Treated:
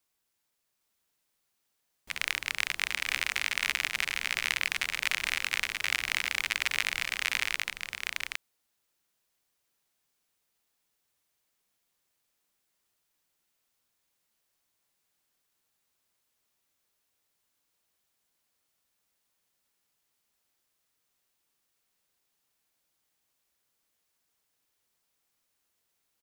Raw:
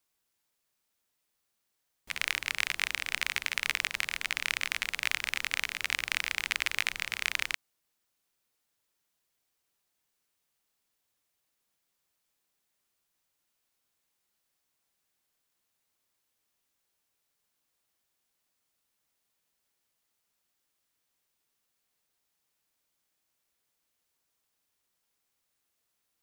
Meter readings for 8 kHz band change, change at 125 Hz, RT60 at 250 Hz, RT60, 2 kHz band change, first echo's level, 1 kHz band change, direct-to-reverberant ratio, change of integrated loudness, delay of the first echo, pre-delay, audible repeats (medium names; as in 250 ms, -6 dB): +1.5 dB, +1.5 dB, no reverb, no reverb, +1.5 dB, -3.5 dB, +1.5 dB, no reverb, +1.0 dB, 811 ms, no reverb, 1